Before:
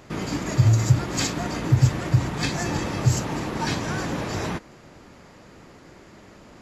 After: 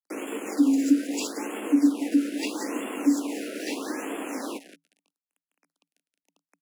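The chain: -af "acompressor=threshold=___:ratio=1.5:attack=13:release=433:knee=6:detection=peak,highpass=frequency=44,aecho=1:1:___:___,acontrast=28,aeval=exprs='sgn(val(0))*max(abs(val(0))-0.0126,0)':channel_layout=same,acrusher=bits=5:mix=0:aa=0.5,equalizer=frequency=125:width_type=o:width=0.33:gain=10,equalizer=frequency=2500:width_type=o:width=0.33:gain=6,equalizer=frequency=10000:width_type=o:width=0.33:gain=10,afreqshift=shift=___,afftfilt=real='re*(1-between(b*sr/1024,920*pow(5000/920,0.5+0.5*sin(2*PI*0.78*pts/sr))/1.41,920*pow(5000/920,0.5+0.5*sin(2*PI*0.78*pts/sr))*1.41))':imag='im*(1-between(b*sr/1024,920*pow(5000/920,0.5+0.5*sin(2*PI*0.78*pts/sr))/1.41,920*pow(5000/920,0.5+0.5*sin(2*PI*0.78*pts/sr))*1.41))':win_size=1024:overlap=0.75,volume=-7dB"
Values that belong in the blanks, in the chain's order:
-33dB, 178, 0.266, 160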